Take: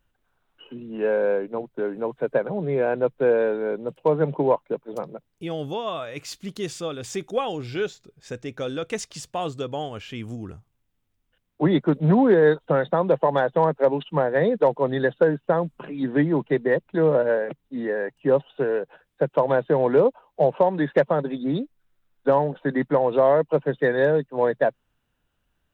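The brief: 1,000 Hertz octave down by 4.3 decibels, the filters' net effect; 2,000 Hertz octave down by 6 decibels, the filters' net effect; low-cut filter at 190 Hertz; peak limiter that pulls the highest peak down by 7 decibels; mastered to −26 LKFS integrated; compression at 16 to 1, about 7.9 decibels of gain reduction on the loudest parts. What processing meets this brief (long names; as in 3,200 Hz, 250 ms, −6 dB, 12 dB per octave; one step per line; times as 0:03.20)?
high-pass filter 190 Hz
parametric band 1,000 Hz −4.5 dB
parametric band 2,000 Hz −6 dB
downward compressor 16 to 1, threshold −22 dBFS
level +5 dB
brickwall limiter −15 dBFS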